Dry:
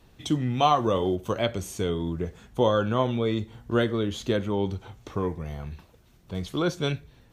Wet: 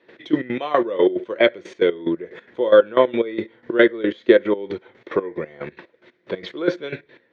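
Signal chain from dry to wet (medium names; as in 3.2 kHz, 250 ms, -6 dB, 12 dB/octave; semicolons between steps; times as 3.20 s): tilt EQ +2.5 dB/octave; in parallel at +1 dB: peak limiter -33 dBFS, peak gain reduction 24 dB; on the sum: trance gate ".x..x.x." 182 bpm -12 dB; transient shaper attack +3 dB, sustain -3 dB; cabinet simulation 270–2900 Hz, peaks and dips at 350 Hz +9 dB, 520 Hz +7 dB, 780 Hz -9 dB, 1.2 kHz -7 dB, 1.9 kHz +7 dB, 2.8 kHz -9 dB; trim +8 dB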